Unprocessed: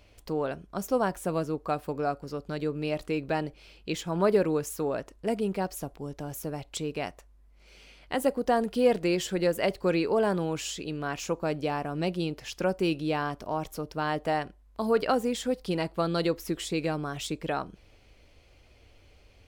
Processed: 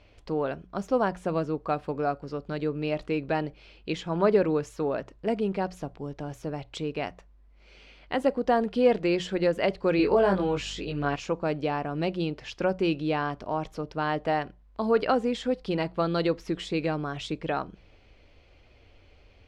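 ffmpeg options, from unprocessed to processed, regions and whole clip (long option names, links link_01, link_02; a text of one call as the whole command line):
ffmpeg -i in.wav -filter_complex "[0:a]asettb=1/sr,asplit=3[link_01][link_02][link_03];[link_01]atrim=end=9.974[link_04];[link_02]atrim=start=9.97:end=11.16,asetpts=PTS-STARTPTS,afade=type=in:duration=0.004:curve=qsin,afade=type=out:start_time=1.186:duration=0.004:curve=qsin,aeval=exprs='val(0)+0.00224*(sin(2*PI*50*n/s)+sin(2*PI*2*50*n/s)/2+sin(2*PI*3*50*n/s)/3+sin(2*PI*4*50*n/s)/4+sin(2*PI*5*50*n/s)/5)':channel_layout=same,asplit=2[link_05][link_06];[link_06]adelay=21,volume=-2dB[link_07];[link_05][link_07]amix=inputs=2:normalize=0,atrim=end_sample=52479[link_08];[link_03]atrim=start=11.156[link_09];[link_04][link_08]acrossfade=duration=0.004:curve1=hsin:curve2=qsin[link_10];[link_10][link_09]acrossfade=duration=0.004:curve1=qsin:curve2=hsin,lowpass=4100,bandreject=frequency=60:width_type=h:width=6,bandreject=frequency=120:width_type=h:width=6,bandreject=frequency=180:width_type=h:width=6,volume=1.5dB" out.wav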